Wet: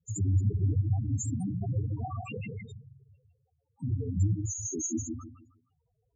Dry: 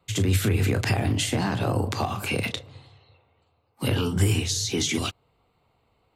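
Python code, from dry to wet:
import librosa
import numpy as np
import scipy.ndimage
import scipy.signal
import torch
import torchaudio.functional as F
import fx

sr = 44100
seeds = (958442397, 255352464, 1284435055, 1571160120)

p1 = x + fx.echo_feedback(x, sr, ms=156, feedback_pct=29, wet_db=-4, dry=0)
p2 = fx.sample_gate(p1, sr, floor_db=-23.0, at=(3.97, 4.65))
p3 = fx.high_shelf_res(p2, sr, hz=5500.0, db=6.5, q=3.0)
p4 = fx.spec_topn(p3, sr, count=4)
y = F.gain(torch.from_numpy(p4), -4.0).numpy()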